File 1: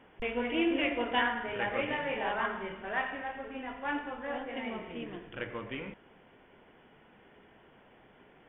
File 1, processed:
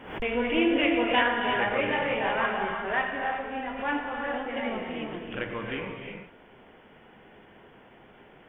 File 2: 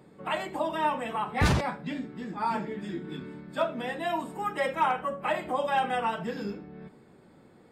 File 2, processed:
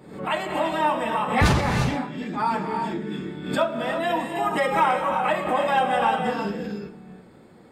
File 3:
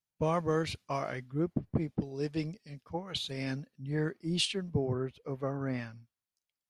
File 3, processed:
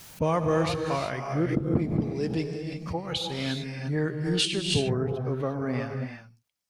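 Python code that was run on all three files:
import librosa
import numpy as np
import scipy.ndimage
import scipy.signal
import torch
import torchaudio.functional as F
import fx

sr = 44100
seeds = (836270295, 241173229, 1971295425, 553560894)

y = fx.rev_gated(x, sr, seeds[0], gate_ms=380, shape='rising', drr_db=4.0)
y = fx.pre_swell(y, sr, db_per_s=86.0)
y = F.gain(torch.from_numpy(y), 4.5).numpy()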